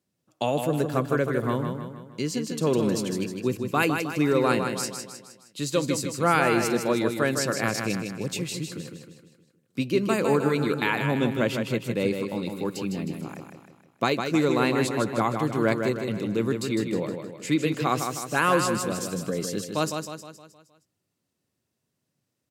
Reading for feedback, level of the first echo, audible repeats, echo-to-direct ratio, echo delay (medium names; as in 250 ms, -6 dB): 49%, -6.0 dB, 5, -5.0 dB, 156 ms